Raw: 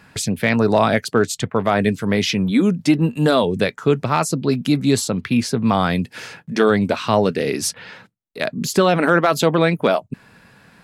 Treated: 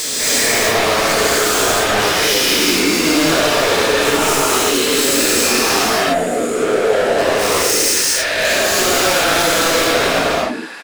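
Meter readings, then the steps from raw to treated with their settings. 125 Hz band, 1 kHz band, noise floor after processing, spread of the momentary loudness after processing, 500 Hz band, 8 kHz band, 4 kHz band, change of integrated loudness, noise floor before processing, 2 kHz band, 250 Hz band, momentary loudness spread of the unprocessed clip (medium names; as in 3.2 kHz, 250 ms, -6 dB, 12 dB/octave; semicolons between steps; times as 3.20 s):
-8.0 dB, +4.5 dB, -20 dBFS, 3 LU, +3.5 dB, +14.0 dB, +12.5 dB, +5.0 dB, -53 dBFS, +9.0 dB, -2.0 dB, 8 LU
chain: every event in the spectrogram widened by 480 ms; low-pass 9 kHz 12 dB/octave; time-frequency box 5.85–7.18 s, 750–6600 Hz -22 dB; high-pass 330 Hz 24 dB/octave; tilt EQ +1.5 dB/octave; peak limiter -0.5 dBFS, peak gain reduction 7.5 dB; sine folder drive 9 dB, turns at -0.5 dBFS; flange 0.5 Hz, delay 6.3 ms, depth 7.2 ms, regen +38%; saturation -16.5 dBFS, distortion -8 dB; on a send: delay 85 ms -21 dB; on the sum: gated-style reverb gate 310 ms rising, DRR -6 dB; trim -4 dB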